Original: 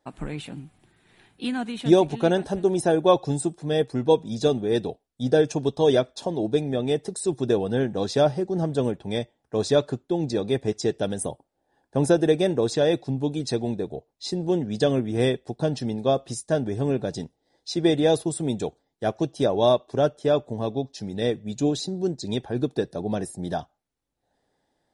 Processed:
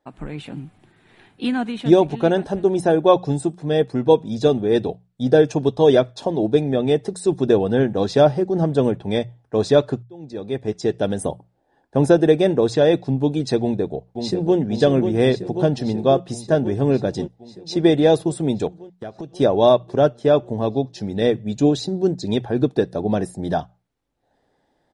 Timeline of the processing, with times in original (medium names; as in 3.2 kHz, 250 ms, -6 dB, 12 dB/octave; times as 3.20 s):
10.03–11.26 s: fade in
13.61–14.57 s: echo throw 540 ms, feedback 75%, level -6 dB
18.67–19.36 s: compression 10:1, threshold -34 dBFS
whole clip: treble shelf 5 kHz -11 dB; hum notches 60/120/180 Hz; level rider gain up to 7 dB